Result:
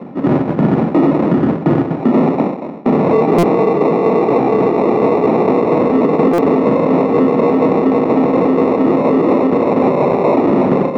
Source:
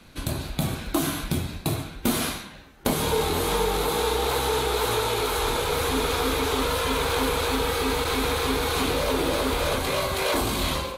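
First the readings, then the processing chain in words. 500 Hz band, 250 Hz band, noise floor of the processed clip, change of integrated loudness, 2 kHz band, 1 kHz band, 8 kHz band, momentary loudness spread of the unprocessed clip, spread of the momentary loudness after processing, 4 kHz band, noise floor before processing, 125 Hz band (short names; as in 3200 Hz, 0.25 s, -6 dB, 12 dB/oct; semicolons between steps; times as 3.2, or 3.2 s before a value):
+14.0 dB, +18.0 dB, -23 dBFS, +11.5 dB, 0.0 dB, +9.5 dB, under -15 dB, 5 LU, 2 LU, under -10 dB, -43 dBFS, +10.0 dB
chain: on a send: split-band echo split 490 Hz, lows 91 ms, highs 0.171 s, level -9 dB; on the sum: sample-and-hold 28×; LPF 1700 Hz 12 dB/oct; tremolo saw down 4.2 Hz, depth 65%; HPF 190 Hz 24 dB/oct; bell 590 Hz -2.5 dB 1.9 oct; vocal rider within 4 dB 2 s; tilt shelf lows +7 dB, about 800 Hz; stuck buffer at 3.38/6.33, samples 256, times 8; maximiser +22 dB; gain -3 dB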